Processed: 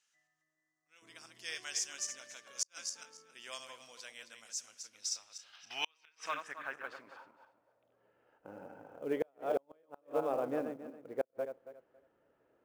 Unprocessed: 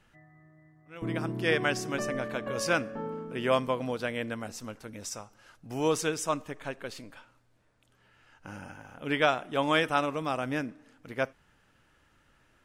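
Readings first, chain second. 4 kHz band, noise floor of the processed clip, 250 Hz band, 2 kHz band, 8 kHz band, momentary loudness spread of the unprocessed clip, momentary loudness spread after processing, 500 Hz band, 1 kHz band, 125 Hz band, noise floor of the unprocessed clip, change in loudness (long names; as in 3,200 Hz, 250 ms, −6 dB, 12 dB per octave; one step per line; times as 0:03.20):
−6.0 dB, −81 dBFS, −13.5 dB, −13.0 dB, +0.5 dB, 16 LU, 17 LU, −8.5 dB, −12.0 dB, −22.5 dB, −66 dBFS, −9.0 dB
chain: feedback delay that plays each chunk backwards 138 ms, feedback 45%, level −7 dB
band-pass filter sweep 6,400 Hz → 490 Hz, 0:04.73–0:08.14
dynamic equaliser 7,200 Hz, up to +4 dB, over −55 dBFS, Q 0.89
gain on a spectral selection 0:05.53–0:06.25, 640–6,300 Hz +10 dB
floating-point word with a short mantissa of 4 bits
gate with flip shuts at −23 dBFS, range −41 dB
level +2.5 dB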